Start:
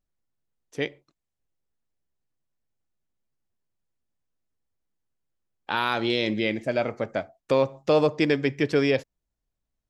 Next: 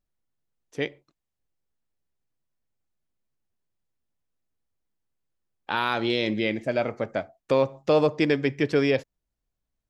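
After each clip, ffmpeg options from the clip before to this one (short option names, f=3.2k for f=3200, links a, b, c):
-af "highshelf=f=5.1k:g=-3.5"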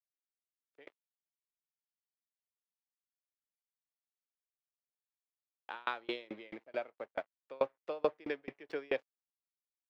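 -filter_complex "[0:a]aeval=exprs='sgn(val(0))*max(abs(val(0))-0.00708,0)':c=same,acrossover=split=330 3600:gain=0.0794 1 0.158[a][b][c];[a][b][c]amix=inputs=3:normalize=0,aeval=exprs='val(0)*pow(10,-32*if(lt(mod(4.6*n/s,1),2*abs(4.6)/1000),1-mod(4.6*n/s,1)/(2*abs(4.6)/1000),(mod(4.6*n/s,1)-2*abs(4.6)/1000)/(1-2*abs(4.6)/1000))/20)':c=same,volume=-3.5dB"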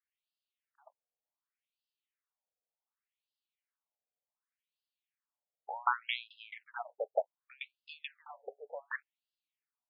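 -af "afftfilt=real='re*between(b*sr/1024,550*pow(3700/550,0.5+0.5*sin(2*PI*0.67*pts/sr))/1.41,550*pow(3700/550,0.5+0.5*sin(2*PI*0.67*pts/sr))*1.41)':imag='im*between(b*sr/1024,550*pow(3700/550,0.5+0.5*sin(2*PI*0.67*pts/sr))/1.41,550*pow(3700/550,0.5+0.5*sin(2*PI*0.67*pts/sr))*1.41)':win_size=1024:overlap=0.75,volume=8.5dB"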